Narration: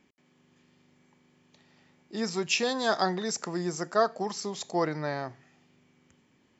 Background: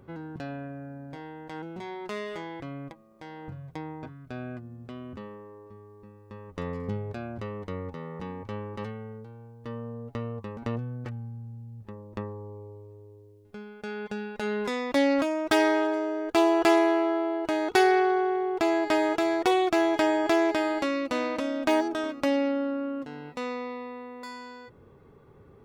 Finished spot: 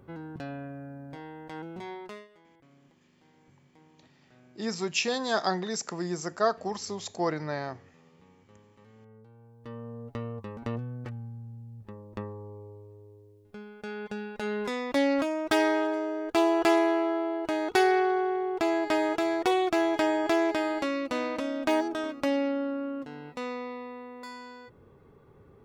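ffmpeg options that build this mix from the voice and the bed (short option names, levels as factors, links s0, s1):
-filter_complex "[0:a]adelay=2450,volume=0.891[s0];[1:a]volume=8.91,afade=t=out:st=1.91:d=0.37:silence=0.0891251,afade=t=in:st=8.84:d=1.22:silence=0.0944061[s1];[s0][s1]amix=inputs=2:normalize=0"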